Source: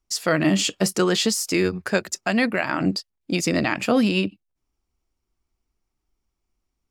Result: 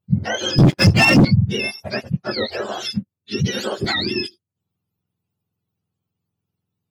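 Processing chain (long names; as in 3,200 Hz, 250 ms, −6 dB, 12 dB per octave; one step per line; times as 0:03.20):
frequency axis turned over on the octave scale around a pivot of 990 Hz
0:00.58–0:01.25: leveller curve on the samples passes 3
0:03.84–0:04.27: multiband upward and downward compressor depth 100%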